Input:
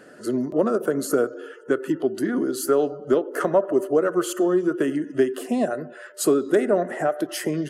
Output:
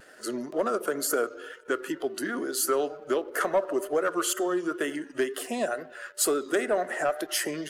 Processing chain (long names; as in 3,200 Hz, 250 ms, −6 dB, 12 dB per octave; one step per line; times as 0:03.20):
high-pass filter 1,300 Hz 6 dB per octave
leveller curve on the samples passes 1
pitch vibrato 2.1 Hz 58 cents